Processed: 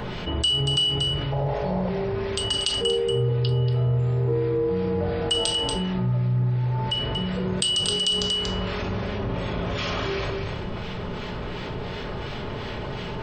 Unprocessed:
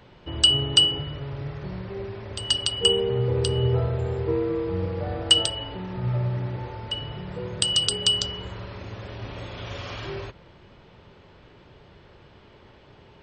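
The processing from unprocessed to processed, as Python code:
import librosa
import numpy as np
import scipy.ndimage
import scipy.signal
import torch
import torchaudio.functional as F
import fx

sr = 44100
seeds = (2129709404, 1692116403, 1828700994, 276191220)

p1 = fx.brickwall_lowpass(x, sr, high_hz=5400.0, at=(2.92, 3.49))
p2 = fx.high_shelf(p1, sr, hz=2100.0, db=-9.0, at=(8.97, 9.78))
p3 = fx.room_shoebox(p2, sr, seeds[0], volume_m3=470.0, walls='furnished', distance_m=1.4)
p4 = fx.harmonic_tremolo(p3, sr, hz=2.8, depth_pct=50, crossover_hz=1600.0)
p5 = fx.band_shelf(p4, sr, hz=660.0, db=13.5, octaves=1.2, at=(1.32, 1.89))
p6 = p5 + fx.echo_single(p5, sr, ms=235, db=-10.0, dry=0)
p7 = fx.env_flatten(p6, sr, amount_pct=70)
y = p7 * 10.0 ** (-7.5 / 20.0)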